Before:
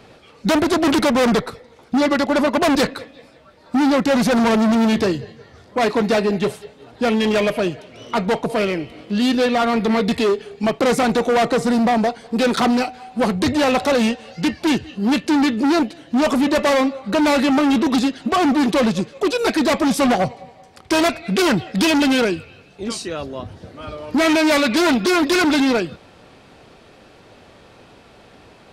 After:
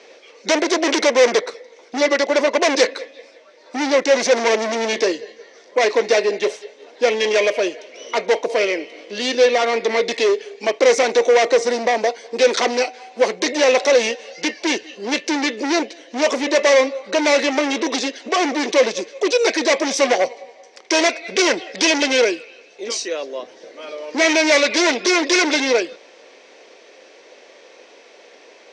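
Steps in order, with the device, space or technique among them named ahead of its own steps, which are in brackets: phone speaker on a table (speaker cabinet 360–7200 Hz, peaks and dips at 510 Hz +5 dB, 800 Hz -5 dB, 1300 Hz -8 dB, 2100 Hz +6 dB, 5900 Hz +10 dB); gain +1.5 dB

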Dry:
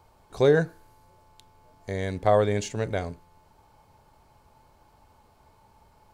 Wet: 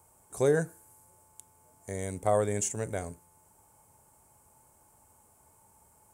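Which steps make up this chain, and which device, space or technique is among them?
1.94–2.35 notch 1700 Hz, Q 7.9; budget condenser microphone (HPF 62 Hz; resonant high shelf 6000 Hz +13.5 dB, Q 3); gain -5.5 dB

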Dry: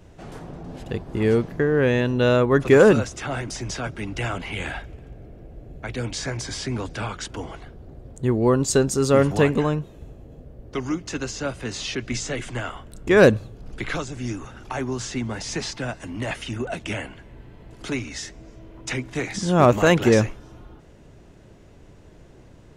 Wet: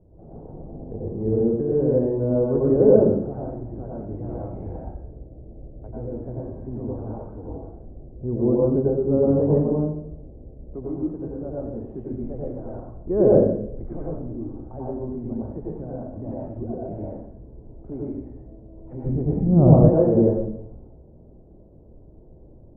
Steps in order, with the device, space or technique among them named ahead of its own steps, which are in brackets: next room (LPF 660 Hz 24 dB/oct; reverb RT60 0.75 s, pre-delay 86 ms, DRR -5.5 dB); 19.04–19.89 tone controls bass +13 dB, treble +3 dB; gain -6.5 dB

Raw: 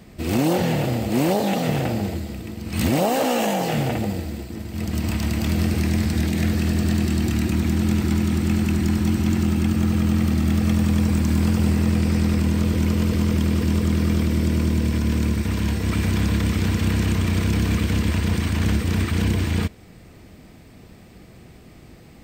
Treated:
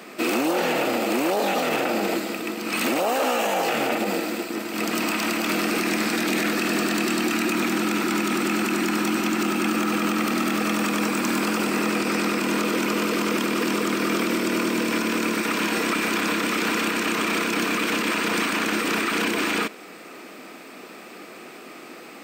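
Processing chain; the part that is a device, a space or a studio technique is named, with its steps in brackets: laptop speaker (HPF 280 Hz 24 dB/oct; bell 1300 Hz +8.5 dB 0.55 oct; bell 2500 Hz +6.5 dB 0.22 oct; limiter -23 dBFS, peak gain reduction 13 dB); gain +8.5 dB

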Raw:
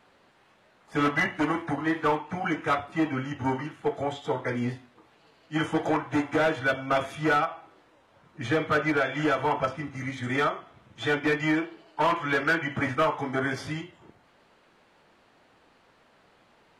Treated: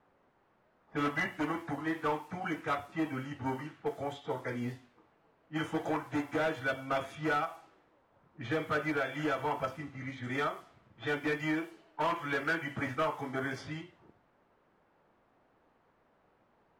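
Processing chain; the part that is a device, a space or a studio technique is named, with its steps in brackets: cassette deck with a dynamic noise filter (white noise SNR 29 dB; low-pass opened by the level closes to 1200 Hz, open at -24.5 dBFS); gain -7.5 dB

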